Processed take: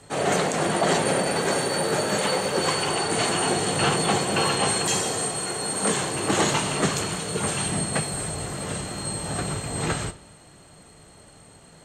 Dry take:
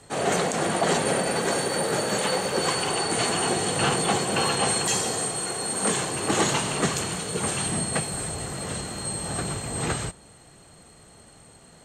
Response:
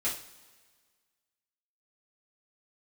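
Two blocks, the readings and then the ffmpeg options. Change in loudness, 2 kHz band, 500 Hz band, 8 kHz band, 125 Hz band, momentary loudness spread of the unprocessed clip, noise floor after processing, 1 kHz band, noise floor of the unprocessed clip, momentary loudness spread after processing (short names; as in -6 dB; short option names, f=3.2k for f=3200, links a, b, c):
+1.0 dB, +1.5 dB, +1.5 dB, 0.0 dB, +2.0 dB, 7 LU, -50 dBFS, +1.0 dB, -51 dBFS, 7 LU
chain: -filter_complex "[0:a]asplit=2[a][b];[1:a]atrim=start_sample=2205,lowpass=5.7k[c];[b][c]afir=irnorm=-1:irlink=0,volume=-13dB[d];[a][d]amix=inputs=2:normalize=0"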